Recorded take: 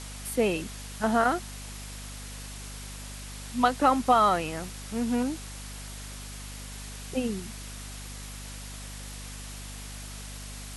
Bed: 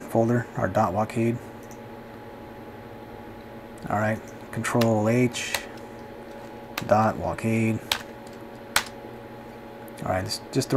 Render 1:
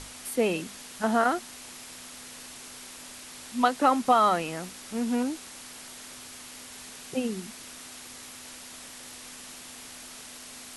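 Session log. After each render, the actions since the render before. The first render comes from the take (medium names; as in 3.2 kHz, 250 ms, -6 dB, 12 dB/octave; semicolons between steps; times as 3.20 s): hum notches 50/100/150/200 Hz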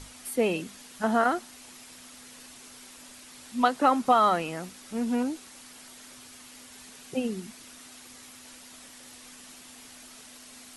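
noise reduction 6 dB, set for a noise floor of -45 dBFS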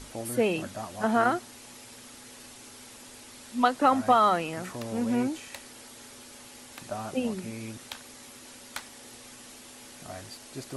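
add bed -16 dB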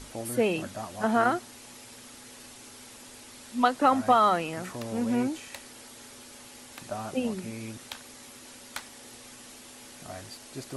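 no audible change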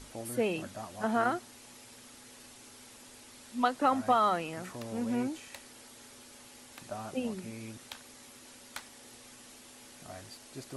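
trim -5 dB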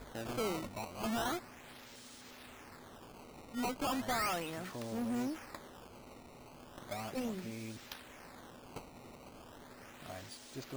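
valve stage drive 32 dB, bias 0.3; decimation with a swept rate 15×, swing 160% 0.36 Hz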